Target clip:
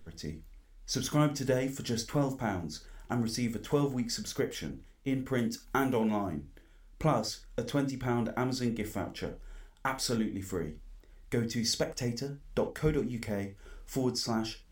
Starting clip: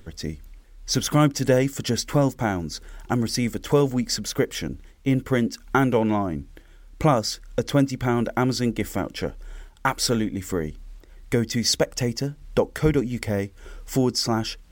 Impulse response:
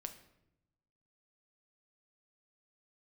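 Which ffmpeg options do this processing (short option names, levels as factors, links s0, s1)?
-filter_complex "[0:a]asettb=1/sr,asplit=3[s0][s1][s2];[s0]atrim=end=5.384[s3];[s1]atrim=start=5.38:end=6.33,asetpts=PTS-STARTPTS,afade=t=in:d=0.004:c=qsin,afade=t=out:st=0.946:d=0.004:c=qsin,highshelf=f=6200:g=10[s4];[s2]atrim=start=6.326[s5];[s3][s4]acrossfade=d=0.004:c1=hsin:c2=qsin[s6];[s6][s5]acrossfade=d=0.004:c1=qsin:c2=hsin[s7];[1:a]atrim=start_sample=2205,atrim=end_sample=6174,asetrate=61740,aresample=44100[s8];[s7][s8]afir=irnorm=-1:irlink=0,volume=0.75"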